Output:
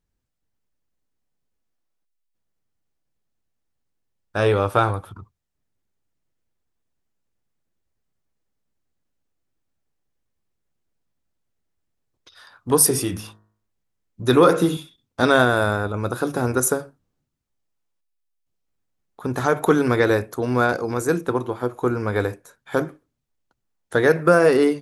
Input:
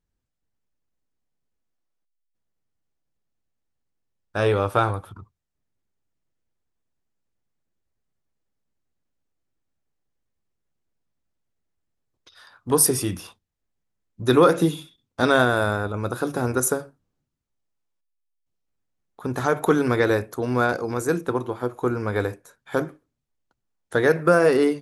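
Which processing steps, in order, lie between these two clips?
12.77–14.77 de-hum 53.12 Hz, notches 35; gain +2 dB

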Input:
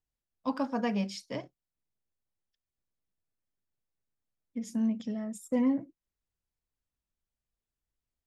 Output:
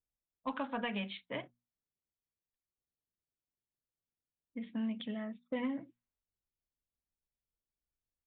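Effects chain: low-pass opened by the level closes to 560 Hz, open at -26 dBFS; tilt shelf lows -8.5 dB, about 1400 Hz; notches 60/120/180/240 Hz; compressor 6:1, threshold -35 dBFS, peak gain reduction 6 dB; one-sided clip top -32.5 dBFS; downsampling 8000 Hz; gain +3 dB

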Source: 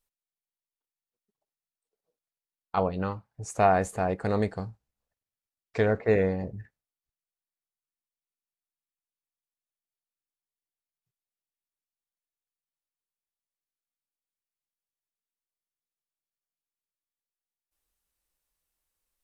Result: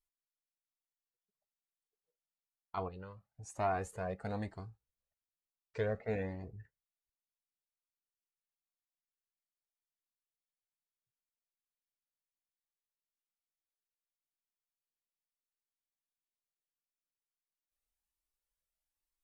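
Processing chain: 2.88–3.56 compressor 6:1, threshold -33 dBFS, peak gain reduction 8.5 dB; cascading flanger rising 1.1 Hz; gain -7 dB

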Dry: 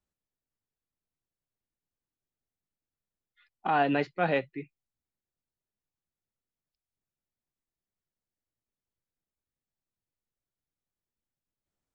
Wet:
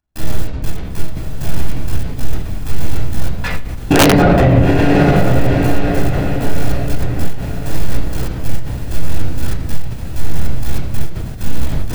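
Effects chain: cycle switcher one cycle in 3, muted; in parallel at -2 dB: compressor 4:1, threshold -36 dBFS, peak gain reduction 12 dB; on the sum: power-law curve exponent 0.5; low shelf 290 Hz +10 dB; upward compressor, threshold -31 dBFS; step gate ".xx.x.x." 96 bpm -60 dB; notches 50/100/150 Hz; diffused feedback echo 0.876 s, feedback 45%, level -8 dB; reverb RT60 0.80 s, pre-delay 13 ms, DRR -4 dB; wrapped overs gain 3.5 dB; maximiser +14.5 dB; ending taper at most 110 dB/s; gain -1 dB

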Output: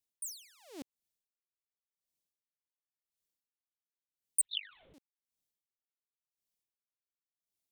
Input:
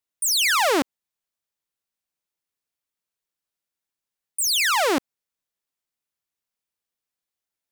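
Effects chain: bell 1300 Hz -14.5 dB 1.6 oct; 4.41–4.94 LPC vocoder at 8 kHz whisper; dB-linear tremolo 0.92 Hz, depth 38 dB

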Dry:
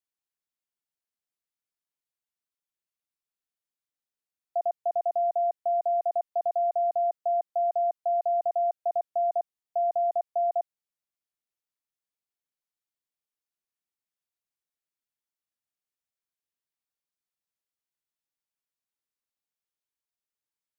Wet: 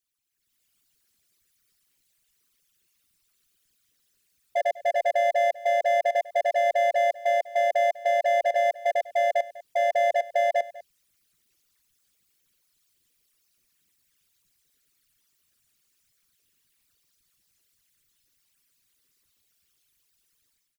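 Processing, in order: formant sharpening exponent 3; bell 800 Hz -13 dB 1.6 oct; in parallel at -1 dB: limiter -44 dBFS, peak gain reduction 10.5 dB; on the sum: AGC gain up to 13.5 dB; overloaded stage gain 24.5 dB; harmoniser -4 st -15 dB, -3 st -6 dB; on a send: echo 0.198 s -18 dB; on the sum: gain +2.5 dB

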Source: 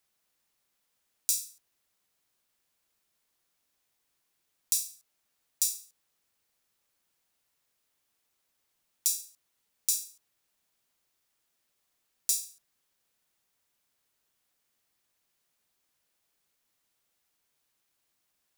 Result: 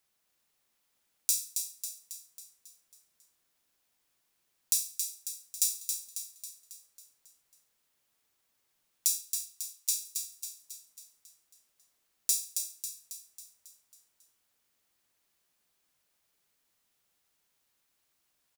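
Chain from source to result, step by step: 9.18–10.05 rippled Chebyshev high-pass 830 Hz, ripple 3 dB; feedback echo 0.273 s, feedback 54%, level -6 dB

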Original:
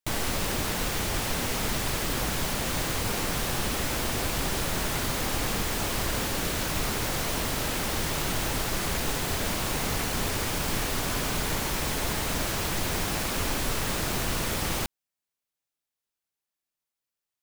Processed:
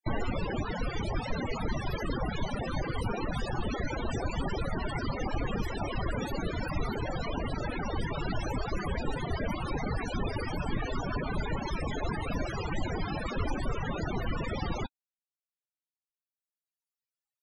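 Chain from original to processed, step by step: reverb removal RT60 1.7 s; in parallel at -6.5 dB: soft clip -29 dBFS, distortion -13 dB; on the sum: loudest bins only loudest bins 32

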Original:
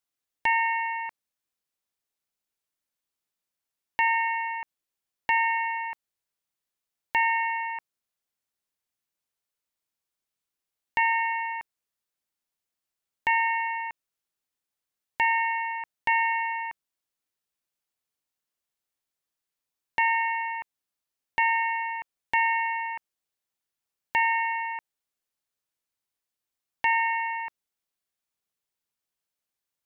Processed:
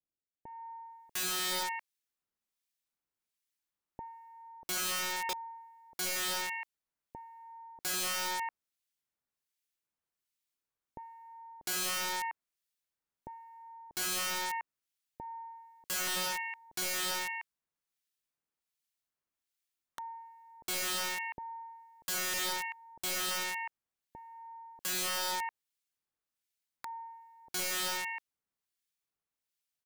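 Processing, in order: bands offset in time lows, highs 0.7 s, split 600 Hz; harmonic tremolo 1.3 Hz, depth 70%, crossover 1800 Hz; wrapped overs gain 29 dB

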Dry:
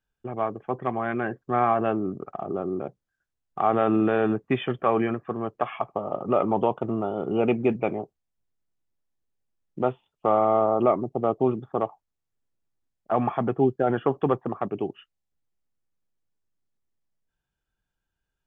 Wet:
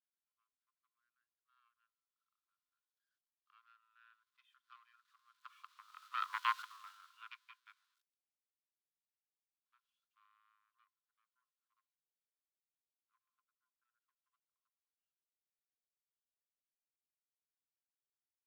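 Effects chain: zero-crossing step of -24 dBFS; Doppler pass-by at 6.5, 10 m/s, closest 3 m; power-law curve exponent 2; rippled Chebyshev high-pass 1000 Hz, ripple 9 dB; gain +7 dB

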